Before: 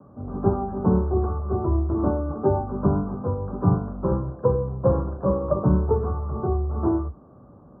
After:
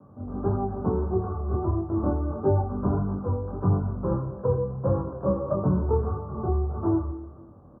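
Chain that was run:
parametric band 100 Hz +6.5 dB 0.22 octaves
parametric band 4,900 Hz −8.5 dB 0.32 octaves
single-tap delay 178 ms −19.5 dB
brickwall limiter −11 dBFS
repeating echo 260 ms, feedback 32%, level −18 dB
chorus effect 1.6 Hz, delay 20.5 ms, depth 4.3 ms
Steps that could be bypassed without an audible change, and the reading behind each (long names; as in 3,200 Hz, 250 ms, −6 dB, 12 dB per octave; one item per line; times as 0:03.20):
parametric band 4,900 Hz: nothing at its input above 1,200 Hz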